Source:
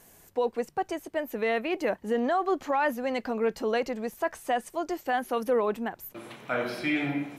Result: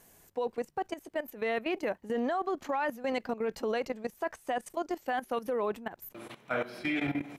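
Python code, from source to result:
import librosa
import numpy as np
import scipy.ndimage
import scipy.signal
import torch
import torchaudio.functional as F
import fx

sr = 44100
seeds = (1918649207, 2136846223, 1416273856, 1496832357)

y = fx.level_steps(x, sr, step_db=15)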